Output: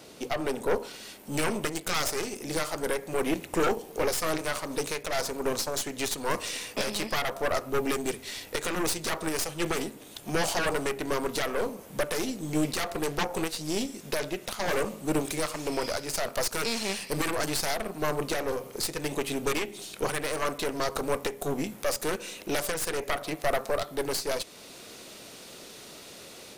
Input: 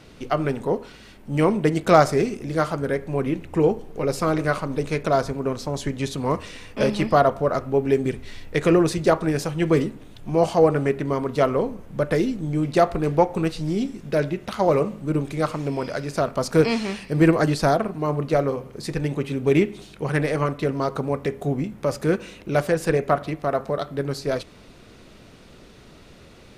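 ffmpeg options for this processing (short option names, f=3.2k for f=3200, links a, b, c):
-filter_complex "[0:a]aderivative,acrossover=split=790[a][b];[a]aeval=exprs='0.0398*sin(PI/2*5.62*val(0)/0.0398)':c=same[c];[b]dynaudnorm=f=680:g=3:m=6dB[d];[c][d]amix=inputs=2:normalize=0,aeval=exprs='0.299*(cos(1*acos(clip(val(0)/0.299,-1,1)))-cos(1*PI/2))+0.133*(cos(2*acos(clip(val(0)/0.299,-1,1)))-cos(2*PI/2))+0.0944*(cos(4*acos(clip(val(0)/0.299,-1,1)))-cos(4*PI/2))+0.0266*(cos(8*acos(clip(val(0)/0.299,-1,1)))-cos(8*PI/2))':c=same,alimiter=limit=-22dB:level=0:latency=1:release=434,volume=7dB"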